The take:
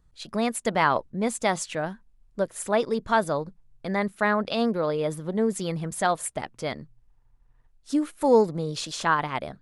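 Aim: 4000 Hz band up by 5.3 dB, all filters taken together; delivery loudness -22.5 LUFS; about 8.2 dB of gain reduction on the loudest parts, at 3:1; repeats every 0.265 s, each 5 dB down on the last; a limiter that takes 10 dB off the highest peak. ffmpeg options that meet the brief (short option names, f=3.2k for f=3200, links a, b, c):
-af "equalizer=f=4k:t=o:g=6.5,acompressor=threshold=-24dB:ratio=3,alimiter=limit=-22dB:level=0:latency=1,aecho=1:1:265|530|795|1060|1325|1590|1855:0.562|0.315|0.176|0.0988|0.0553|0.031|0.0173,volume=9dB"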